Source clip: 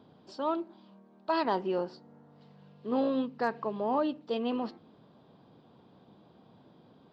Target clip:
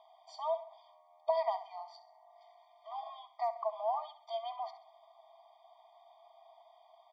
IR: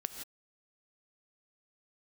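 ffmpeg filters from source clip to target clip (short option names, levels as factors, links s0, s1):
-af "bass=f=250:g=-3,treble=f=4000:g=-2,acompressor=threshold=0.02:ratio=4,equalizer=f=670:w=5.5:g=9.5,aecho=1:1:66|132|198|264:0.2|0.0858|0.0369|0.0159,afftfilt=real='re*eq(mod(floor(b*sr/1024/620),2),1)':imag='im*eq(mod(floor(b*sr/1024/620),2),1)':win_size=1024:overlap=0.75,volume=1.19"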